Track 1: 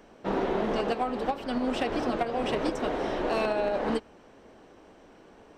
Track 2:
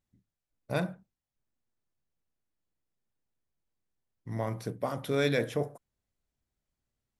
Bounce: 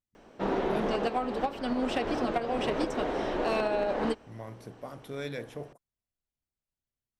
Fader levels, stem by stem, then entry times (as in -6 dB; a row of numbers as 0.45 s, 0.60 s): -1.0 dB, -9.5 dB; 0.15 s, 0.00 s